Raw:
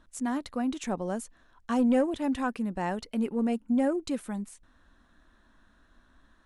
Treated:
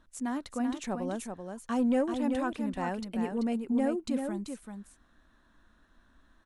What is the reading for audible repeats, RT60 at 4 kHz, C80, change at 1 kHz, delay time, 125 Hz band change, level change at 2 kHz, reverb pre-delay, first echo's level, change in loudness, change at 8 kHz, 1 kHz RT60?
1, no reverb audible, no reverb audible, −2.0 dB, 386 ms, −2.0 dB, −2.0 dB, no reverb audible, −6.0 dB, −2.5 dB, −2.0 dB, no reverb audible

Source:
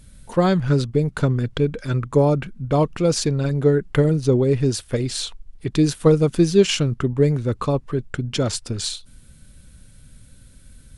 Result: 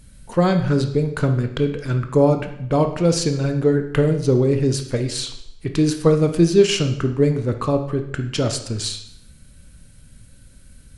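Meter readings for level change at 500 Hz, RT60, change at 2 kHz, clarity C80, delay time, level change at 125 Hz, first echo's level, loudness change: +1.0 dB, 0.75 s, +1.0 dB, 12.5 dB, no echo audible, 0.0 dB, no echo audible, +0.5 dB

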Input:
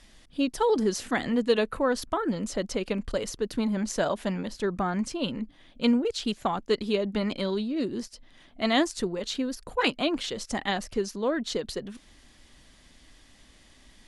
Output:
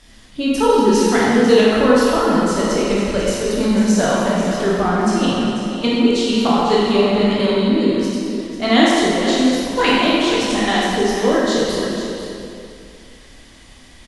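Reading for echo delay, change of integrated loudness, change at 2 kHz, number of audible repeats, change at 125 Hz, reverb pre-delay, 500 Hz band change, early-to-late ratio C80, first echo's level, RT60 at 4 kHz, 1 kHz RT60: 494 ms, +12.0 dB, +12.5 dB, 1, +12.0 dB, 12 ms, +12.0 dB, −1.5 dB, −9.5 dB, 2.1 s, 2.5 s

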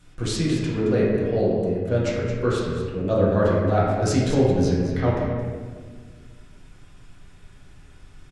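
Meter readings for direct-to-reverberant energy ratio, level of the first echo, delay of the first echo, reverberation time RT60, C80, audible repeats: −6.5 dB, −9.5 dB, 221 ms, 1.6 s, 1.0 dB, 1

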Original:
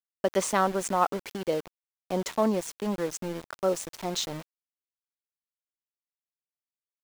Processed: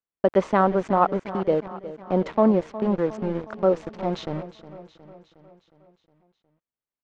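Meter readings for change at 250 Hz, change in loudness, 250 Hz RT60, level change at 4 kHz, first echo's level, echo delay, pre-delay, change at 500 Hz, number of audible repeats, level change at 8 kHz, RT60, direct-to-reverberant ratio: +7.5 dB, +5.5 dB, no reverb audible, −7.5 dB, −15.0 dB, 362 ms, no reverb audible, +6.5 dB, 5, below −20 dB, no reverb audible, no reverb audible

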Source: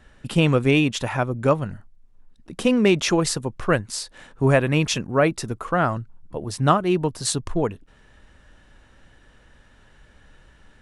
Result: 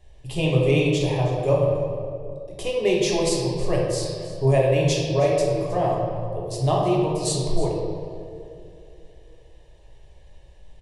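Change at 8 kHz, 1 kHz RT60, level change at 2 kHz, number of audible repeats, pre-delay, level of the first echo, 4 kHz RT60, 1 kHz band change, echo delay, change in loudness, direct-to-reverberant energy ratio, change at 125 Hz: −2.0 dB, 2.1 s, −6.5 dB, 1, 3 ms, −15.0 dB, 1.4 s, −2.5 dB, 317 ms, −1.0 dB, −3.5 dB, +1.0 dB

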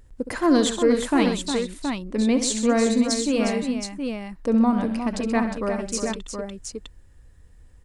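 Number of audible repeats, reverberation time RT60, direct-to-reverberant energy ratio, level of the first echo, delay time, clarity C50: 4, no reverb audible, no reverb audible, −10.5 dB, 67 ms, no reverb audible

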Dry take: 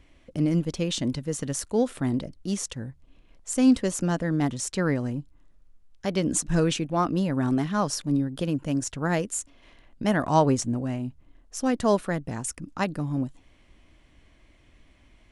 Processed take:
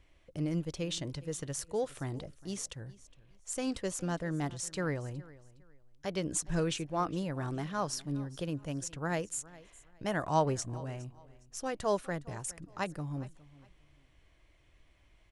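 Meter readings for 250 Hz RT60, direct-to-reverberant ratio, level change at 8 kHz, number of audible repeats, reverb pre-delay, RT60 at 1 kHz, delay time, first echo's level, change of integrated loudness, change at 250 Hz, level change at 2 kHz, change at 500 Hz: no reverb audible, no reverb audible, −7.0 dB, 2, no reverb audible, no reverb audible, 412 ms, −20.5 dB, −9.5 dB, −12.5 dB, −7.0 dB, −7.5 dB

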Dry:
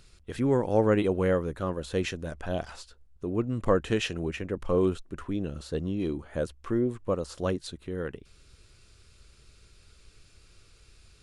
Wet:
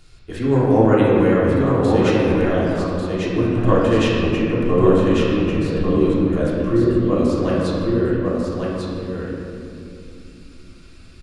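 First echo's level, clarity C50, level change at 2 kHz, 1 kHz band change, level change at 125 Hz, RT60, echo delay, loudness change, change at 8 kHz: −3.0 dB, −3.5 dB, +10.5 dB, +12.0 dB, +12.5 dB, 2.8 s, 1,145 ms, +11.5 dB, can't be measured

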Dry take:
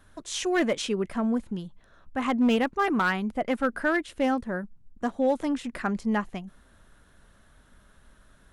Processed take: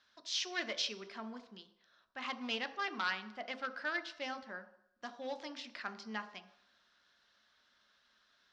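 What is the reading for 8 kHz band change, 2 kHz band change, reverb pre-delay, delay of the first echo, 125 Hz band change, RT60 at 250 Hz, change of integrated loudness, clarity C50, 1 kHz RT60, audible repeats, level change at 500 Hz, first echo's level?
−9.0 dB, −8.5 dB, 3 ms, no echo audible, below −20 dB, 0.55 s, −12.5 dB, 12.5 dB, 0.80 s, no echo audible, −18.0 dB, no echo audible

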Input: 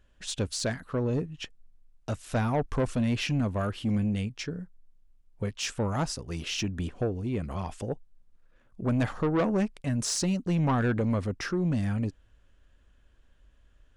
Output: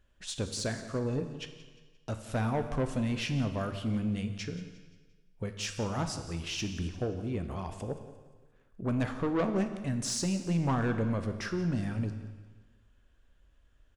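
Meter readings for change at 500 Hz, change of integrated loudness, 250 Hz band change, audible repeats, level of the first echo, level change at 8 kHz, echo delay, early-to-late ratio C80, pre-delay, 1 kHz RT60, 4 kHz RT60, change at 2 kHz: −3.5 dB, −3.5 dB, −3.5 dB, 3, −16.0 dB, −3.5 dB, 175 ms, 10.0 dB, 13 ms, 1.4 s, 1.4 s, −3.0 dB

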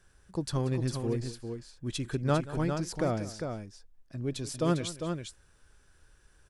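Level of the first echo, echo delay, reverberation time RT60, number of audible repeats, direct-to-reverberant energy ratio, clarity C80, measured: −17.0 dB, 183 ms, no reverb audible, 2, no reverb audible, no reverb audible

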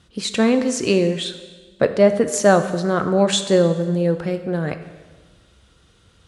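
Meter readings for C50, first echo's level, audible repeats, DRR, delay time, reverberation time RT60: 11.0 dB, no echo audible, no echo audible, 8.5 dB, no echo audible, 1.4 s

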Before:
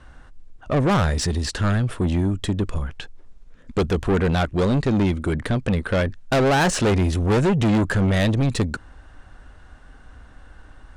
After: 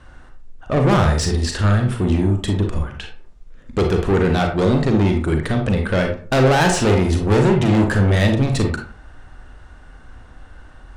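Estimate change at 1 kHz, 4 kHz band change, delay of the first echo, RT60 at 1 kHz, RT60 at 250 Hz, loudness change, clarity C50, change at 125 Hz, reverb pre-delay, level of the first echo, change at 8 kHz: +3.5 dB, +3.0 dB, no echo audible, 0.40 s, 0.45 s, +3.5 dB, 6.0 dB, +4.0 dB, 33 ms, no echo audible, +2.5 dB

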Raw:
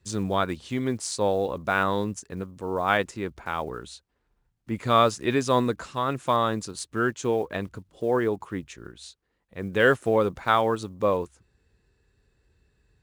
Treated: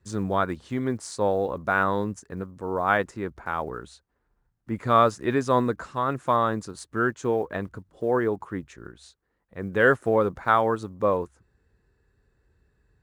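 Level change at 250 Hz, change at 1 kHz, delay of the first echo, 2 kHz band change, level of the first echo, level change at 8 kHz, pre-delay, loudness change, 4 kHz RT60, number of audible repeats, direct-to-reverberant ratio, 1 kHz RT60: 0.0 dB, +1.0 dB, no echo audible, +1.0 dB, no echo audible, −6.5 dB, no reverb audible, +0.5 dB, no reverb audible, no echo audible, no reverb audible, no reverb audible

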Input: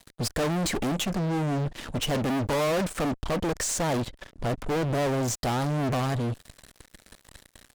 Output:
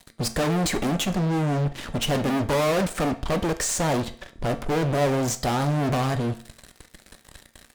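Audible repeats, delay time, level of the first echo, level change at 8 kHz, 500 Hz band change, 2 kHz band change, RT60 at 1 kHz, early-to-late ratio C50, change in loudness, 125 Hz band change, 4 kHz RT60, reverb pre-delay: no echo audible, no echo audible, no echo audible, +3.0 dB, +3.0 dB, +3.0 dB, 0.50 s, 14.5 dB, +3.0 dB, +3.0 dB, 0.45 s, 4 ms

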